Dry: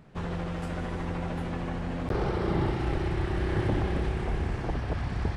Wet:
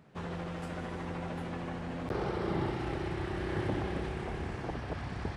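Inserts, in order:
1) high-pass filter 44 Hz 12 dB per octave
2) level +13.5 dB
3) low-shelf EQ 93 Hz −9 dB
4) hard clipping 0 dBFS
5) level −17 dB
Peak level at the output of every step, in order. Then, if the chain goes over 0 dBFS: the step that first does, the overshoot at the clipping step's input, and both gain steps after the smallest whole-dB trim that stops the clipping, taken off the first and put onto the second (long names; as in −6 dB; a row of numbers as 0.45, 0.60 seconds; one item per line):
−15.5, −2.0, −3.5, −3.5, −20.5 dBFS
no step passes full scale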